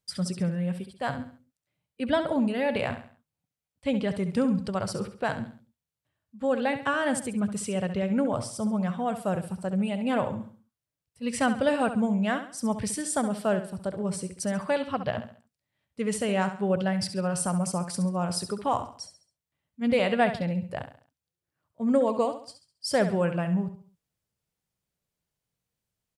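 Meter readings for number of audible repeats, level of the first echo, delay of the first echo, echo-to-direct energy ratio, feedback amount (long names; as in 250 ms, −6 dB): 3, −10.5 dB, 68 ms, −10.0 dB, 38%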